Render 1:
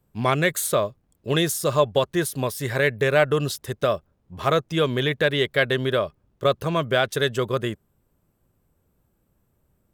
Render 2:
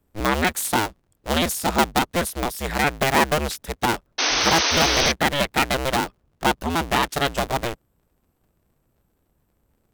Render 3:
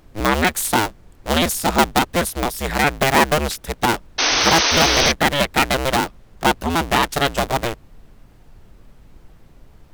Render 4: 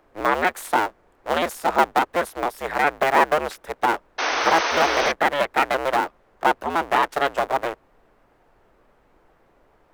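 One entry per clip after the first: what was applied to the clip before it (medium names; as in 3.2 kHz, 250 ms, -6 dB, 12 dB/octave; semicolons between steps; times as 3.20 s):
cycle switcher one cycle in 2, inverted; painted sound noise, 4.18–5.12 s, 240–6400 Hz -21 dBFS
added noise brown -47 dBFS; trim +3.5 dB
three-band isolator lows -19 dB, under 350 Hz, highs -14 dB, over 2.1 kHz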